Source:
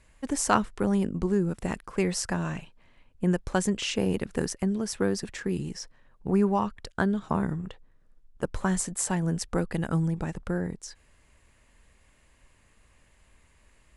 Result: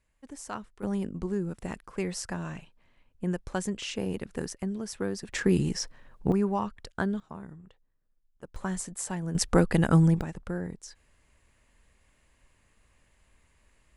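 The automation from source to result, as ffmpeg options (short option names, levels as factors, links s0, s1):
-af "asetnsamples=n=441:p=0,asendcmd='0.83 volume volume -5.5dB;5.33 volume volume 6dB;6.32 volume volume -3.5dB;7.2 volume volume -15.5dB;8.56 volume volume -6dB;9.35 volume volume 6dB;10.21 volume volume -4dB',volume=0.178"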